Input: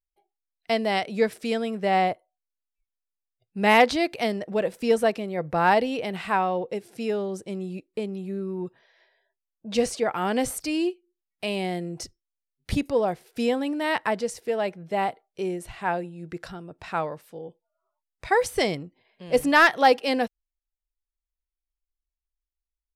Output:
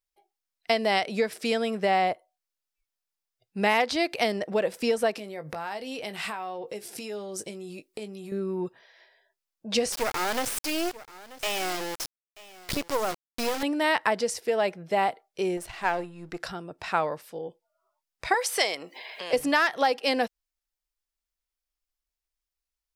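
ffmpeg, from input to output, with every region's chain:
ffmpeg -i in.wav -filter_complex "[0:a]asettb=1/sr,asplit=3[link_01][link_02][link_03];[link_01]atrim=end=5.164[link_04];[link_02]atrim=start=5.16:end=8.32,asetpts=PTS-STARTPTS,afade=type=in:duration=0.004:curve=qsin,afade=type=out:start_time=3.156:duration=0.004:curve=qsin,acompressor=threshold=-35dB:ratio=16:attack=3.2:release=140:knee=1:detection=peak,highshelf=frequency=4600:gain=9.5,asplit=2[link_05][link_06];[link_06]adelay=19,volume=-10dB[link_07];[link_05][link_07]amix=inputs=2:normalize=0,atrim=end_sample=139356[link_08];[link_03]atrim=start=8.316[link_09];[link_04][link_08]acrossfade=duration=0.004:curve1=hsin:curve2=qsin[link_10];[link_10][link_09]acrossfade=duration=0.004:curve1=qsin:curve2=hsin,asettb=1/sr,asplit=3[link_11][link_12][link_13];[link_11]atrim=end=9.924[link_14];[link_12]atrim=start=9.92:end=13.63,asetpts=PTS-STARTPTS,afade=type=in:duration=0.004:curve=qsin,afade=type=out:start_time=3.706:duration=0.004:curve=qsin,acrusher=bits=3:dc=4:mix=0:aa=0.000001,aecho=1:1:935:0.1,atrim=end_sample=163611[link_15];[link_13]atrim=start=13.626[link_16];[link_14][link_15]acrossfade=duration=0.004:curve1=hsin:curve2=qsin[link_17];[link_17][link_16]acrossfade=duration=0.004:curve1=qsin:curve2=hsin,asettb=1/sr,asplit=3[link_18][link_19][link_20];[link_18]atrim=end=15.574[link_21];[link_19]atrim=start=15.57:end=16.4,asetpts=PTS-STARTPTS,afade=type=in:duration=0.004:curve=qsin,afade=type=out:start_time=0.826:duration=0.004:curve=qsin,aeval=exprs='if(lt(val(0),0),0.447*val(0),val(0))':channel_layout=same,deesser=0.7[link_22];[link_20]atrim=start=16.396[link_23];[link_21][link_22]acrossfade=duration=0.004:curve1=hsin:curve2=qsin[link_24];[link_24][link_23]acrossfade=duration=0.004:curve1=qsin:curve2=hsin,asettb=1/sr,asplit=3[link_25][link_26][link_27];[link_25]atrim=end=18.344[link_28];[link_26]atrim=start=18.34:end=19.33,asetpts=PTS-STARTPTS,afade=type=in:duration=0.004:curve=qsin,afade=type=out:start_time=0.986:duration=0.004:curve=qsin,highpass=640,acompressor=mode=upward:threshold=-28dB:ratio=2.5:attack=3.2:release=140:knee=2.83:detection=peak[link_29];[link_27]atrim=start=19.326[link_30];[link_28][link_29]acrossfade=duration=0.004:curve1=hsin:curve2=qsin[link_31];[link_31][link_30]acrossfade=duration=0.004:curve1=qsin:curve2=hsin,equalizer=frequency=5100:width=4.1:gain=3.5,acompressor=threshold=-23dB:ratio=12,lowshelf=frequency=280:gain=-9,volume=5dB" out.wav

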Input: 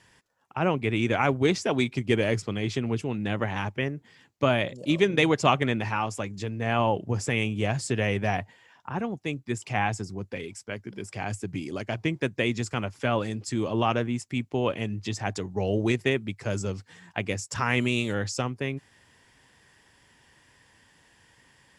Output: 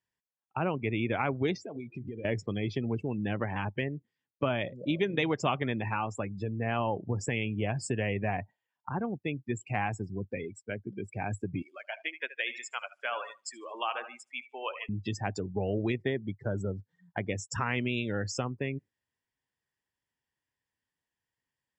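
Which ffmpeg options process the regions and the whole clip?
ffmpeg -i in.wav -filter_complex "[0:a]asettb=1/sr,asplit=3[link_01][link_02][link_03];[link_01]atrim=end=1.564[link_04];[link_02]atrim=start=1.56:end=2.25,asetpts=PTS-STARTPTS,afade=type=in:duration=0.004:curve=qsin,afade=type=out:start_time=0.686:duration=0.004:curve=qsin,bandreject=frequency=69.32:width_type=h:width=4,bandreject=frequency=138.64:width_type=h:width=4,bandreject=frequency=207.96:width_type=h:width=4,bandreject=frequency=277.28:width_type=h:width=4,bandreject=frequency=346.6:width_type=h:width=4,bandreject=frequency=415.92:width_type=h:width=4,bandreject=frequency=485.24:width_type=h:width=4,bandreject=frequency=554.56:width_type=h:width=4,bandreject=frequency=623.88:width_type=h:width=4,bandreject=frequency=693.2:width_type=h:width=4,bandreject=frequency=762.52:width_type=h:width=4,bandreject=frequency=831.84:width_type=h:width=4,bandreject=frequency=901.16:width_type=h:width=4,bandreject=frequency=970.48:width_type=h:width=4,bandreject=frequency=1039.8:width_type=h:width=4,bandreject=frequency=1109.12:width_type=h:width=4,bandreject=frequency=1178.44:width_type=h:width=4,bandreject=frequency=1247.76:width_type=h:width=4,bandreject=frequency=1317.08:width_type=h:width=4,bandreject=frequency=1386.4:width_type=h:width=4,bandreject=frequency=1455.72:width_type=h:width=4,bandreject=frequency=1525.04:width_type=h:width=4,bandreject=frequency=1594.36:width_type=h:width=4,bandreject=frequency=1663.68:width_type=h:width=4,bandreject=frequency=1733:width_type=h:width=4,bandreject=frequency=1802.32:width_type=h:width=4,bandreject=frequency=1871.64:width_type=h:width=4,bandreject=frequency=1940.96:width_type=h:width=4,acompressor=threshold=-34dB:ratio=12:attack=3.2:release=140:knee=1:detection=peak[link_05];[link_03]atrim=start=2.246[link_06];[link_04][link_05]acrossfade=duration=0.004:curve1=hsin:curve2=qsin[link_07];[link_07][link_06]acrossfade=duration=0.004:curve1=qsin:curve2=hsin,asettb=1/sr,asplit=3[link_08][link_09][link_10];[link_08]atrim=end=11.624[link_11];[link_09]atrim=start=11.62:end=14.89,asetpts=PTS-STARTPTS,afade=type=in:duration=0.004:curve=qsin,afade=type=out:start_time=3.266:duration=0.004:curve=qsin,highpass=960,aecho=1:1:75|150|225|300|375|450:0.316|0.168|0.0888|0.0471|0.025|0.0132,atrim=end_sample=144207[link_12];[link_10]atrim=start=14.886[link_13];[link_11][link_12]acrossfade=duration=0.004:curve1=hsin:curve2=qsin[link_14];[link_14][link_13]acrossfade=duration=0.004:curve1=qsin:curve2=hsin,asettb=1/sr,asplit=3[link_15][link_16][link_17];[link_15]atrim=end=15.984[link_18];[link_16]atrim=start=15.98:end=17.3,asetpts=PTS-STARTPTS,afade=type=in:duration=0.004:curve=qsin,afade=type=out:start_time=1.316:duration=0.004:curve=qsin,equalizer=frequency=2600:width=5.9:gain=-12.5,adynamicsmooth=sensitivity=2.5:basefreq=7300[link_19];[link_17]atrim=start=17.296[link_20];[link_18][link_19]acrossfade=duration=0.004:curve1=hsin:curve2=qsin[link_21];[link_21][link_20]acrossfade=duration=0.004:curve1=qsin:curve2=hsin,afftdn=noise_reduction=31:noise_floor=-35,acompressor=threshold=-30dB:ratio=2" out.wav

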